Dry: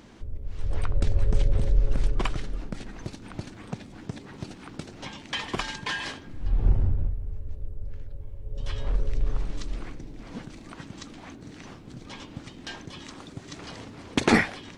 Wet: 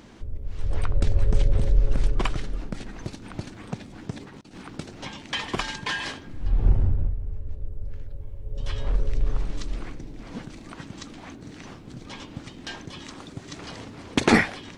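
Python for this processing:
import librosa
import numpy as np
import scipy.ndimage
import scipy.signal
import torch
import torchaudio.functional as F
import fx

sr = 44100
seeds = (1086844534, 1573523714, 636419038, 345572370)

y = fx.over_compress(x, sr, threshold_db=-46.0, ratio=-0.5, at=(4.2, 4.66))
y = fx.high_shelf(y, sr, hz=6000.0, db=-6.0, at=(6.96, 7.72))
y = F.gain(torch.from_numpy(y), 2.0).numpy()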